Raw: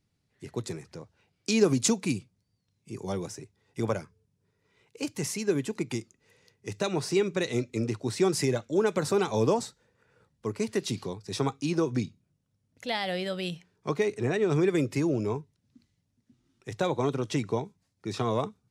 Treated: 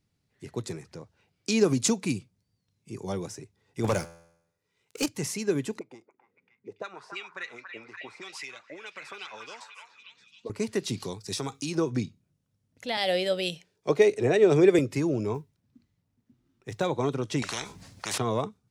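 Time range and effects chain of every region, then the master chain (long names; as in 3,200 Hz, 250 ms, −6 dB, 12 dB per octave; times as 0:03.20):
0:03.84–0:05.06: high-shelf EQ 3,500 Hz +10 dB + leveller curve on the samples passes 3 + tuned comb filter 84 Hz, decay 0.75 s, mix 50%
0:05.79–0:10.50: high-shelf EQ 3,900 Hz +6.5 dB + envelope filter 220–2,700 Hz, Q 3, up, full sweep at −21.5 dBFS + echo through a band-pass that steps 283 ms, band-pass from 1,200 Hz, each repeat 0.7 octaves, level −2 dB
0:11.00–0:11.75: high-shelf EQ 3,300 Hz +11.5 dB + downward compressor 5 to 1, threshold −28 dBFS
0:12.97–0:14.79: drawn EQ curve 210 Hz 0 dB, 570 Hz +10 dB, 1,100 Hz 0 dB, 2,600 Hz +6 dB + multiband upward and downward expander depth 40%
0:15.34–0:16.84: log-companded quantiser 8 bits + one half of a high-frequency compander decoder only
0:17.42–0:18.18: high-shelf EQ 10,000 Hz −7.5 dB + every bin compressed towards the loudest bin 10 to 1
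whole clip: no processing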